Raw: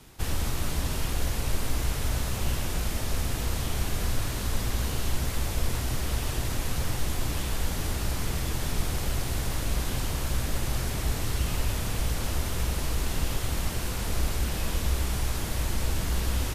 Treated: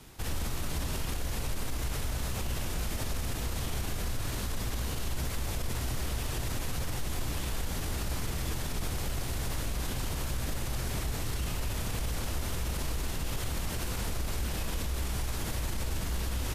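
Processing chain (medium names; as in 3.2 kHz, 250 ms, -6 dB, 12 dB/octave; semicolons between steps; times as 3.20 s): peak limiter -24 dBFS, peak gain reduction 11 dB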